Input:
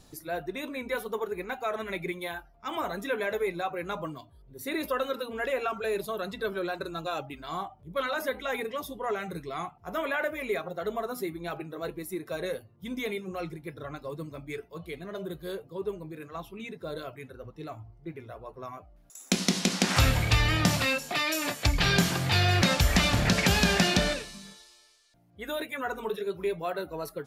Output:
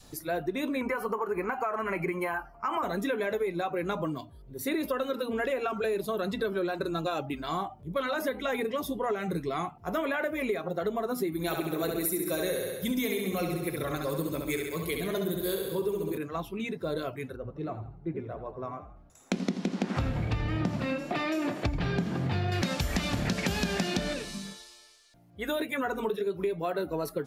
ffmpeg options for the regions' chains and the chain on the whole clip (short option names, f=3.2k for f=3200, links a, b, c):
-filter_complex "[0:a]asettb=1/sr,asplit=3[a][b][c];[a]atrim=end=0.814[d];[b]atrim=start=0.81:end=2.83,asetpts=PTS-STARTPTS,afade=t=in:d=0.004:c=qsin,afade=t=out:st=2.016:d=0.004:c=qsin,equalizer=f=1.1k:w=1.2:g=14,acompressor=threshold=-30dB:ratio=2.5:attack=3.2:release=140:knee=1:detection=peak,asuperstop=centerf=3600:order=8:qfactor=3.7[e];[c]atrim=start=2.826[f];[d][e]acrossfade=d=0.004:c1=hsin:c2=qsin[g];[g][f]acrossfade=d=0.004:c1=qsin:c2=hsin,asettb=1/sr,asplit=3[h][i][j];[h]atrim=end=11.324[k];[i]atrim=start=11.32:end=16.18,asetpts=PTS-STARTPTS,afade=t=in:d=0.004:c=qsin,afade=t=out:st=4.856:d=0.004:c=qsin,aemphasis=mode=production:type=75kf,aecho=1:1:67|134|201|268|335|402|469|536|603:0.596|0.357|0.214|0.129|0.0772|0.0463|0.0278|0.0167|0.01,atrim=end_sample=214326[l];[j]atrim=start=16.176[m];[k][l]acrossfade=d=0.004:c1=hsin:c2=qsin[n];[n][m]acrossfade=d=0.004:c1=qsin:c2=hsin,asettb=1/sr,asplit=3[o][p][q];[o]atrim=end=17.364[r];[p]atrim=start=17.36:end=22.52,asetpts=PTS-STARTPTS,afade=t=in:d=0.004:c=qsin,afade=t=out:st=5.156:d=0.004:c=qsin,lowpass=f=1.1k:p=1,asplit=5[s][t][u][v][w];[t]adelay=82,afreqshift=31,volume=-12dB[x];[u]adelay=164,afreqshift=62,volume=-20.4dB[y];[v]adelay=246,afreqshift=93,volume=-28.8dB[z];[w]adelay=328,afreqshift=124,volume=-37.2dB[aa];[s][x][y][z][aa]amix=inputs=5:normalize=0,atrim=end_sample=227556[ab];[q]atrim=start=22.516[ac];[r][ab]acrossfade=d=0.004:c1=hsin:c2=qsin[ad];[ad][ac]acrossfade=d=0.004:c1=qsin:c2=hsin,adynamicequalizer=threshold=0.00794:dfrequency=260:dqfactor=0.75:tfrequency=260:tqfactor=0.75:attack=5:release=100:ratio=0.375:range=3.5:mode=boostabove:tftype=bell,acompressor=threshold=-31dB:ratio=6,volume=4dB"